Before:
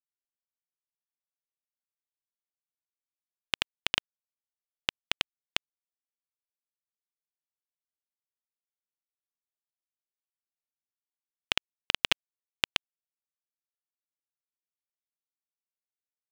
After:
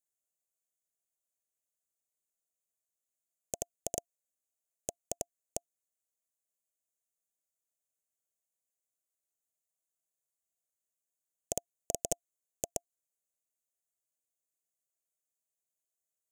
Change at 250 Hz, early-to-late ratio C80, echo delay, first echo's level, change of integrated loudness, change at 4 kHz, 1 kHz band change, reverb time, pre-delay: -2.0 dB, no reverb, no echo, no echo, -8.5 dB, -24.5 dB, -7.0 dB, no reverb, no reverb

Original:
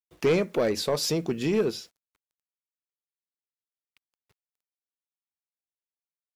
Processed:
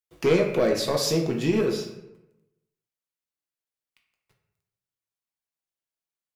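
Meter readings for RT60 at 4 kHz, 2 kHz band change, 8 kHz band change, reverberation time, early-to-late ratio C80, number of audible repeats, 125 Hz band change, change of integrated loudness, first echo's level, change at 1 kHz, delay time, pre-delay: 0.55 s, +2.5 dB, +2.0 dB, 0.90 s, 8.5 dB, no echo, +3.5 dB, +2.5 dB, no echo, +2.5 dB, no echo, 6 ms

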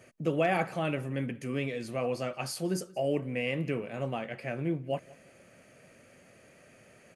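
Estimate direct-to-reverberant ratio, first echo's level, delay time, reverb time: no reverb, -23.5 dB, 180 ms, no reverb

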